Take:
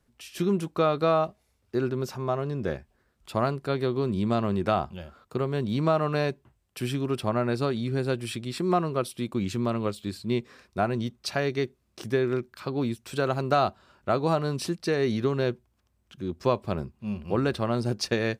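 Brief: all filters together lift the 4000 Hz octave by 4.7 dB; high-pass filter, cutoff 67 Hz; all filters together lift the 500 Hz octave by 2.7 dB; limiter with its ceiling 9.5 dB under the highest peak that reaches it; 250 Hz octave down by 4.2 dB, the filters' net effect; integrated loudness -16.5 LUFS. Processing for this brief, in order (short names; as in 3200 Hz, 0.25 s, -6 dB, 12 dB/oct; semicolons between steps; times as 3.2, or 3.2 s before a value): HPF 67 Hz; bell 250 Hz -8.5 dB; bell 500 Hz +6 dB; bell 4000 Hz +5.5 dB; gain +13.5 dB; limiter -3 dBFS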